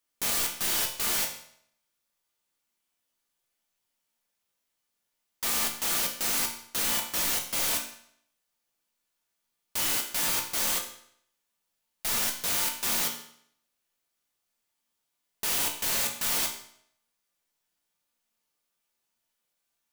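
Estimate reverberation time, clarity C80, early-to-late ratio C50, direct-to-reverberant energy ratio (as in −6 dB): 0.70 s, 11.0 dB, 8.0 dB, 1.0 dB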